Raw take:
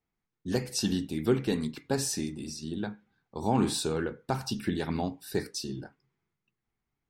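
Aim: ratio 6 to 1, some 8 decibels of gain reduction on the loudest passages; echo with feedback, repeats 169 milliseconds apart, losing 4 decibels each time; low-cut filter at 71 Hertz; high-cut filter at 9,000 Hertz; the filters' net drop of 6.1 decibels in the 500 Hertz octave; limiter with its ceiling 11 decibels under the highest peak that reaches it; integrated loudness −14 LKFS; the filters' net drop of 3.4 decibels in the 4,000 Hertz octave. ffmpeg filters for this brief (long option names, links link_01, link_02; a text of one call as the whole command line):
ffmpeg -i in.wav -af "highpass=71,lowpass=9000,equalizer=frequency=500:width_type=o:gain=-8.5,equalizer=frequency=4000:width_type=o:gain=-4,acompressor=threshold=-31dB:ratio=6,alimiter=level_in=6dB:limit=-24dB:level=0:latency=1,volume=-6dB,aecho=1:1:169|338|507|676|845|1014|1183|1352|1521:0.631|0.398|0.25|0.158|0.0994|0.0626|0.0394|0.0249|0.0157,volume=25dB" out.wav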